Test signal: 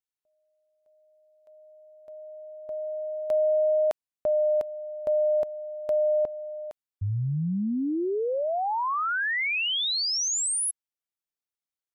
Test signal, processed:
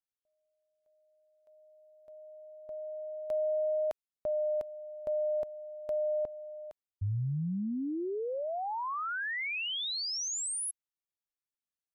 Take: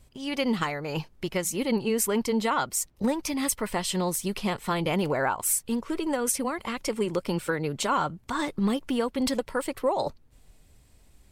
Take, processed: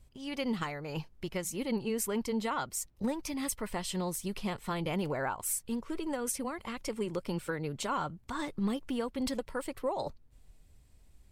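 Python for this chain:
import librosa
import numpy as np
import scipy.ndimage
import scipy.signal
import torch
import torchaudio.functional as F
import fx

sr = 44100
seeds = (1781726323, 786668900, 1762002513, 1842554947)

y = fx.low_shelf(x, sr, hz=120.0, db=7.0)
y = y * librosa.db_to_amplitude(-8.0)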